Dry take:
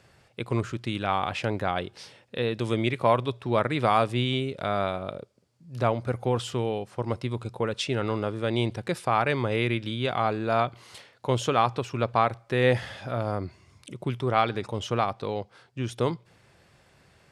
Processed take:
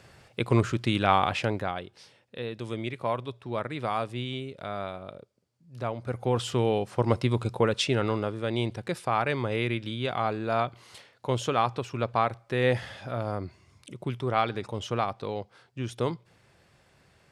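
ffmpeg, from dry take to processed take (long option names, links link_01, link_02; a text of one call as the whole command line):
ffmpeg -i in.wav -af "volume=17dB,afade=type=out:start_time=1.12:duration=0.69:silence=0.251189,afade=type=in:start_time=5.94:duration=0.96:silence=0.237137,afade=type=out:start_time=7.49:duration=0.88:silence=0.421697" out.wav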